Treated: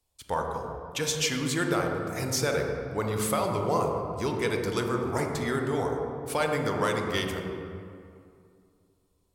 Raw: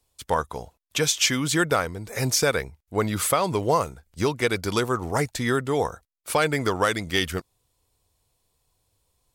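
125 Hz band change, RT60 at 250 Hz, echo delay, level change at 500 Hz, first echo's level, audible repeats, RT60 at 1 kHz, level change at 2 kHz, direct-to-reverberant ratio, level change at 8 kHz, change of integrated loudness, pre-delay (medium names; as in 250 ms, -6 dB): -3.0 dB, 2.6 s, no echo, -3.0 dB, no echo, no echo, 2.3 s, -5.5 dB, 1.5 dB, -6.5 dB, -4.5 dB, 26 ms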